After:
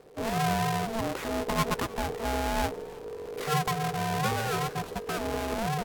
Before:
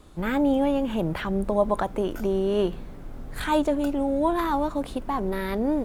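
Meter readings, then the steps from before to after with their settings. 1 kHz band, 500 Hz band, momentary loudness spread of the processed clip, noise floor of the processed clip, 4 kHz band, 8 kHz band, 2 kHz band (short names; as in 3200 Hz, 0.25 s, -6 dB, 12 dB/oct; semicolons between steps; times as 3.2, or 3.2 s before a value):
-0.5 dB, -7.5 dB, 7 LU, -42 dBFS, +3.5 dB, +9.5 dB, +1.5 dB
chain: half-waves squared off; frequency-shifting echo 0.312 s, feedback 64%, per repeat +61 Hz, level -22.5 dB; ring modulator 450 Hz; gain -6 dB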